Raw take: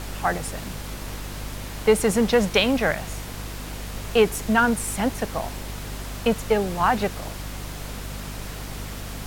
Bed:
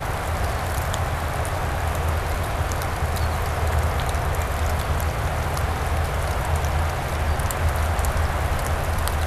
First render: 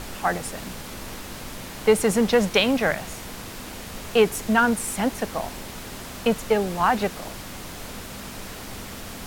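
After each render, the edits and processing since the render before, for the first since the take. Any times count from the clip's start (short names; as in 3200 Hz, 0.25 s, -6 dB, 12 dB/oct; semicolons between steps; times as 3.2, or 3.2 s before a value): notches 50/100/150 Hz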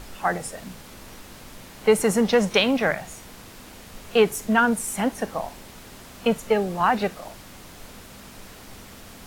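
noise print and reduce 7 dB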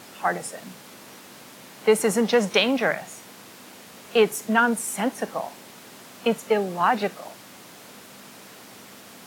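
Bessel high-pass 190 Hz, order 4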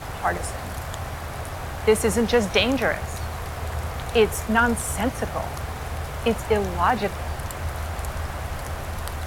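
add bed -7.5 dB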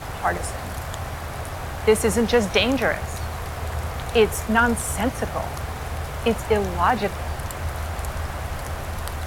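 gain +1 dB; limiter -3 dBFS, peak gain reduction 1.5 dB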